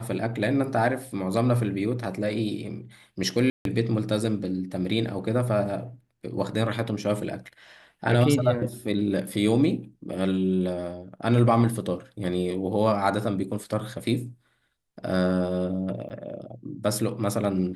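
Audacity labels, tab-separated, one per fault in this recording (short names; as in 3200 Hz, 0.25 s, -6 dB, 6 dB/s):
3.500000	3.650000	gap 0.152 s
16.090000	16.100000	gap 8.8 ms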